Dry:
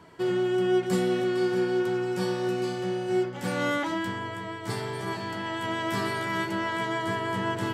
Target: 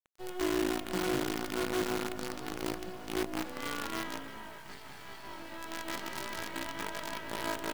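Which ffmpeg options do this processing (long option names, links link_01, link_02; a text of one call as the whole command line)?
ffmpeg -i in.wav -filter_complex "[0:a]highpass=260,lowpass=5500,asplit=7[link_01][link_02][link_03][link_04][link_05][link_06][link_07];[link_02]adelay=203,afreqshift=-55,volume=-3.5dB[link_08];[link_03]adelay=406,afreqshift=-110,volume=-9.9dB[link_09];[link_04]adelay=609,afreqshift=-165,volume=-16.3dB[link_10];[link_05]adelay=812,afreqshift=-220,volume=-22.6dB[link_11];[link_06]adelay=1015,afreqshift=-275,volume=-29dB[link_12];[link_07]adelay=1218,afreqshift=-330,volume=-35.4dB[link_13];[link_01][link_08][link_09][link_10][link_11][link_12][link_13]amix=inputs=7:normalize=0,flanger=delay=18:depth=6.3:speed=0.26,acrusher=bits=5:dc=4:mix=0:aa=0.000001,asettb=1/sr,asplit=3[link_14][link_15][link_16];[link_14]atrim=end=4.604[link_17];[link_15]atrim=start=4.6:end=5.24,asetpts=PTS-STARTPTS,afade=type=in:duration=0.004:curve=qsin,afade=type=out:start_time=0.636:duration=0.004:curve=qsin,equalizer=frequency=440:width_type=o:width=1.3:gain=-7[link_18];[link_16]atrim=start=5.236[link_19];[link_17][link_18]acrossfade=duration=0.004:curve1=hsin:curve2=qsin[link_20];[link_20][link_19]acrossfade=duration=0.004:curve1=qsin:curve2=hsin,volume=-6dB" out.wav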